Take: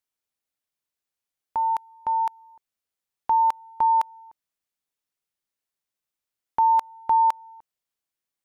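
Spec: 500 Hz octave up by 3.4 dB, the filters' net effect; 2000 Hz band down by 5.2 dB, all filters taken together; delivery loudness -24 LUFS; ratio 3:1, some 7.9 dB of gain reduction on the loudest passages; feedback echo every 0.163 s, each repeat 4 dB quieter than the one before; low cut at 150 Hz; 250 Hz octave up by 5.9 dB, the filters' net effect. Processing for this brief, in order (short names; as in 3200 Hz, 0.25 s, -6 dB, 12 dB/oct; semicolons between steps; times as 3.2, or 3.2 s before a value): HPF 150 Hz; bell 250 Hz +7 dB; bell 500 Hz +3.5 dB; bell 2000 Hz -7.5 dB; compressor 3:1, threshold -28 dBFS; feedback echo 0.163 s, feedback 63%, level -4 dB; gain +6 dB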